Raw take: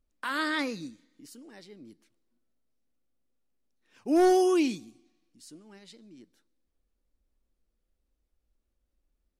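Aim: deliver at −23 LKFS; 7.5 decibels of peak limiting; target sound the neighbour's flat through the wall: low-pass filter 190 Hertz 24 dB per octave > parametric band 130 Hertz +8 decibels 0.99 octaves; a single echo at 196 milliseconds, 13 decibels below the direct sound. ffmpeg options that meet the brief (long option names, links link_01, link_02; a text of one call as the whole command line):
ffmpeg -i in.wav -af "alimiter=limit=-23.5dB:level=0:latency=1,lowpass=frequency=190:width=0.5412,lowpass=frequency=190:width=1.3066,equalizer=frequency=130:width_type=o:width=0.99:gain=8,aecho=1:1:196:0.224,volume=27dB" out.wav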